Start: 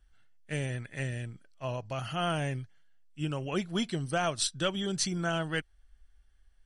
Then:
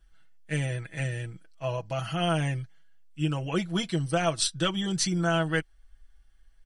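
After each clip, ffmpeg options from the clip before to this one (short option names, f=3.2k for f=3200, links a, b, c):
-af "aecho=1:1:6.1:0.74,volume=1.5dB"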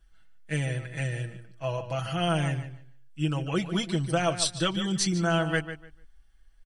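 -filter_complex "[0:a]asplit=2[a][b];[b]adelay=148,lowpass=f=4.1k:p=1,volume=-10.5dB,asplit=2[c][d];[d]adelay=148,lowpass=f=4.1k:p=1,volume=0.21,asplit=2[e][f];[f]adelay=148,lowpass=f=4.1k:p=1,volume=0.21[g];[a][c][e][g]amix=inputs=4:normalize=0"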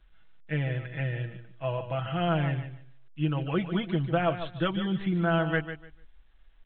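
-filter_complex "[0:a]acrossover=split=2600[a][b];[b]acompressor=threshold=-48dB:ratio=4:attack=1:release=60[c];[a][c]amix=inputs=2:normalize=0" -ar 8000 -c:a pcm_alaw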